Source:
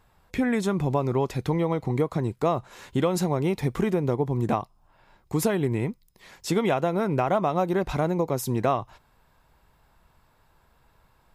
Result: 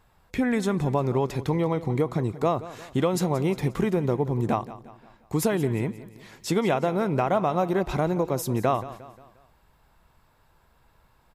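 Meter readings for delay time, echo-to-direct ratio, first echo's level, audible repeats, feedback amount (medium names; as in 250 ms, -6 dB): 177 ms, -15.0 dB, -16.0 dB, 3, 46%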